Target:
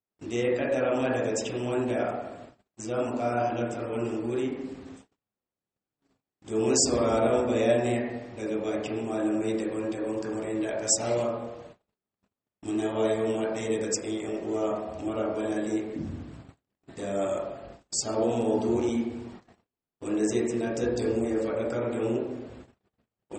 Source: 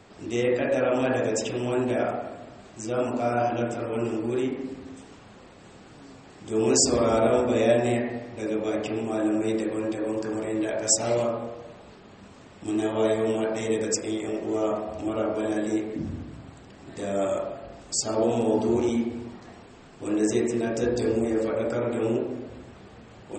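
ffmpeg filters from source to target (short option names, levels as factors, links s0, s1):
-af "agate=range=0.00794:threshold=0.00794:ratio=16:detection=peak,volume=0.75"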